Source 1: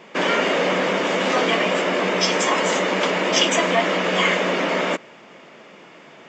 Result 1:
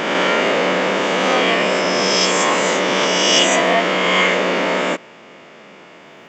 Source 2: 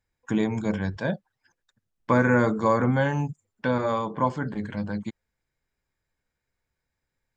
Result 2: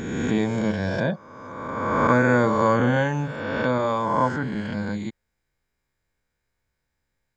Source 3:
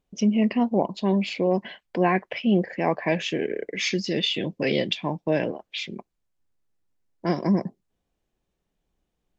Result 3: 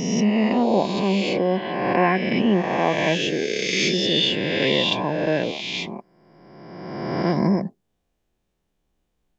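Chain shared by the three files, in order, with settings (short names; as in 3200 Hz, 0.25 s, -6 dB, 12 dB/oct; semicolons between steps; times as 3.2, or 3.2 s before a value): spectral swells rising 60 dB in 1.76 s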